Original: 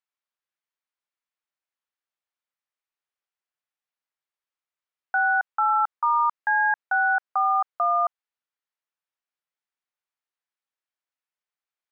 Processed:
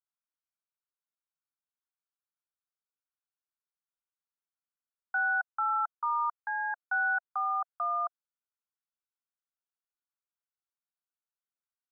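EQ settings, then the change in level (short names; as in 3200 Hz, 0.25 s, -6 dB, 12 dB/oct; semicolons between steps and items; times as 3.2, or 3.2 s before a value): elliptic band-pass 690–1500 Hz; differentiator; +8.5 dB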